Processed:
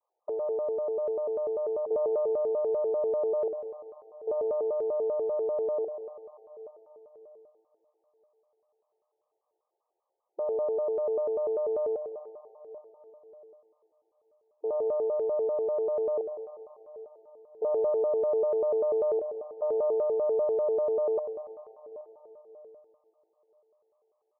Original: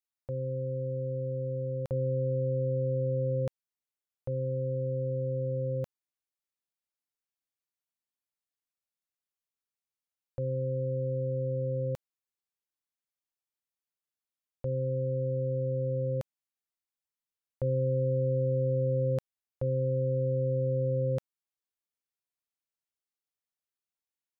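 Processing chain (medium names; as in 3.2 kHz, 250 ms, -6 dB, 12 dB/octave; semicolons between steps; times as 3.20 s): power-law waveshaper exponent 0.7; brick-wall FIR band-pass 390–1100 Hz; distance through air 350 m; delay 827 ms -20 dB; reverberation RT60 3.9 s, pre-delay 51 ms, DRR 6.5 dB; vibrato with a chosen wave square 5.1 Hz, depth 250 cents; trim +5 dB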